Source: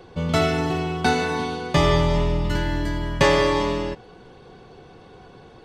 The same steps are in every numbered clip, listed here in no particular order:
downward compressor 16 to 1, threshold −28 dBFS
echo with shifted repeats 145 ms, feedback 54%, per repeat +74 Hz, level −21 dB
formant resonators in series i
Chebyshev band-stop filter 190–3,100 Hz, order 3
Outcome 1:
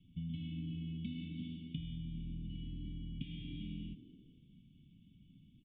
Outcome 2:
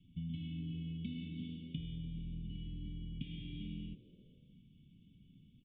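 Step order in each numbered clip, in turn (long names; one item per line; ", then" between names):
Chebyshev band-stop filter, then echo with shifted repeats, then downward compressor, then formant resonators in series
Chebyshev band-stop filter, then downward compressor, then formant resonators in series, then echo with shifted repeats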